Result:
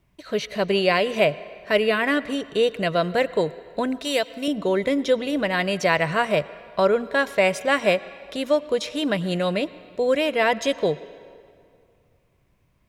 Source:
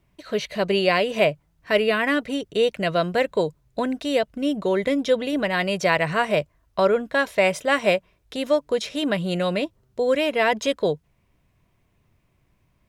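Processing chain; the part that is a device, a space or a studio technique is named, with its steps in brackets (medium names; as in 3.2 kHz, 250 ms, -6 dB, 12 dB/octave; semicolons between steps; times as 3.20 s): filtered reverb send (on a send: high-pass 340 Hz 6 dB/octave + low-pass 6.2 kHz + reverberation RT60 2.3 s, pre-delay 86 ms, DRR 17 dB); 4.04–4.48 s: on the sum: tilt EQ +2.5 dB/octave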